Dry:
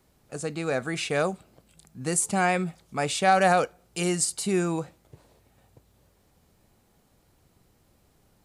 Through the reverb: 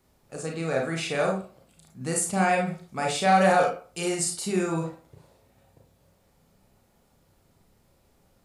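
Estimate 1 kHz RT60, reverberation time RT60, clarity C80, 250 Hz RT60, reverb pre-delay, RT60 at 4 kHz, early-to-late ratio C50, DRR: 0.40 s, 0.40 s, 11.5 dB, 0.35 s, 29 ms, 0.25 s, 6.0 dB, −0.5 dB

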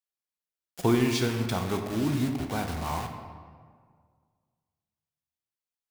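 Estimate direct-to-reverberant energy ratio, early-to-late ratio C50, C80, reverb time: 4.5 dB, 6.5 dB, 7.5 dB, 1.8 s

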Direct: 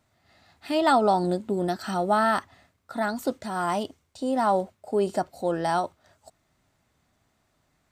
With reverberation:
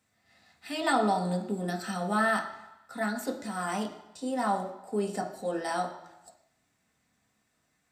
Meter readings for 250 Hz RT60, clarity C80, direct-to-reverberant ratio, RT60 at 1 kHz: 0.90 s, 12.5 dB, 1.5 dB, 1.0 s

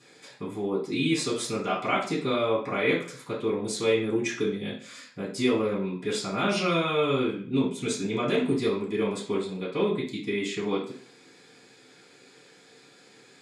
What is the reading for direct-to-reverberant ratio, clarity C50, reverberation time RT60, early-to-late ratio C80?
−9.0 dB, 6.5 dB, 0.50 s, 11.0 dB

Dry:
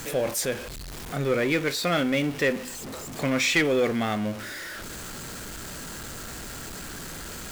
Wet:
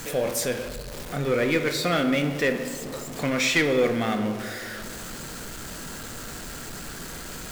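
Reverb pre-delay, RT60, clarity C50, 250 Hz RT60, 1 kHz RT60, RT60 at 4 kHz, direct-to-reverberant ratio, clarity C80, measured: 4 ms, 2.3 s, 9.0 dB, 2.3 s, 2.0 s, 0.95 s, 7.0 dB, 10.0 dB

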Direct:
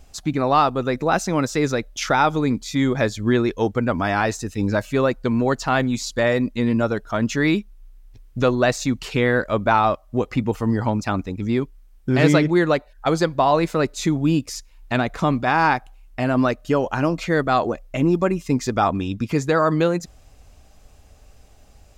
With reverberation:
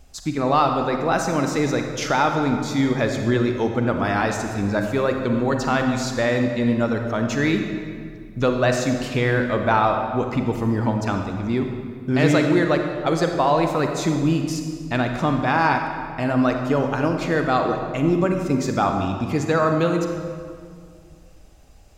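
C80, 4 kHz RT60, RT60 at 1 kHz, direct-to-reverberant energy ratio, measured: 6.0 dB, 1.4 s, 2.0 s, 4.0 dB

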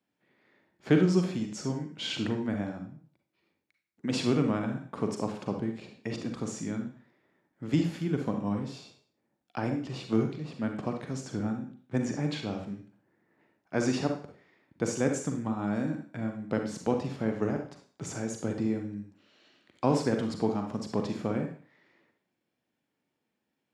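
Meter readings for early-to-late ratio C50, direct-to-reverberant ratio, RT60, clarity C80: 6.0 dB, 4.0 dB, 0.45 s, 11.0 dB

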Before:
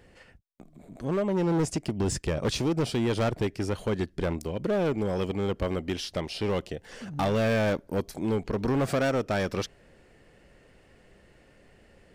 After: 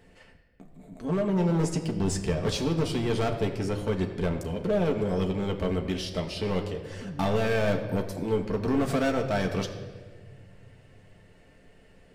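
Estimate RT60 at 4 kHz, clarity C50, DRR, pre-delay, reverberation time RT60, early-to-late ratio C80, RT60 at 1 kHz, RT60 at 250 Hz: 1.2 s, 9.0 dB, 2.0 dB, 4 ms, 1.6 s, 9.5 dB, 1.3 s, 2.3 s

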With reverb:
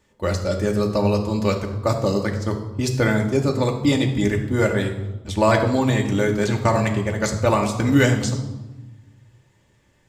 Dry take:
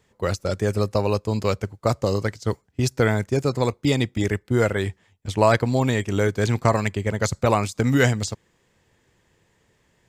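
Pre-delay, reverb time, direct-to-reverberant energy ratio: 3 ms, 1.1 s, 1.5 dB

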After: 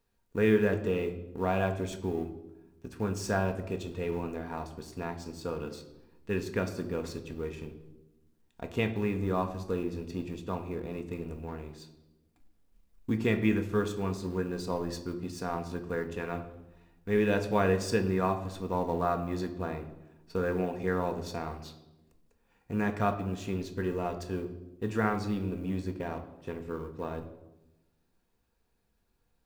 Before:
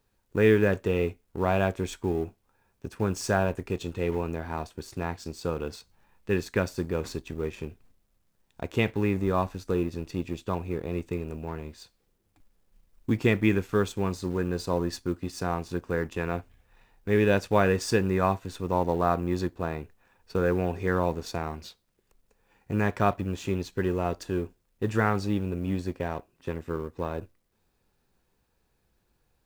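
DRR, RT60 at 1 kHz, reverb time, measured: 5.5 dB, 0.90 s, 1.0 s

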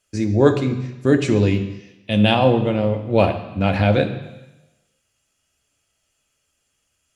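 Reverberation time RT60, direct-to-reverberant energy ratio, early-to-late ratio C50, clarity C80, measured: 1.0 s, 5.0 dB, 10.0 dB, 12.0 dB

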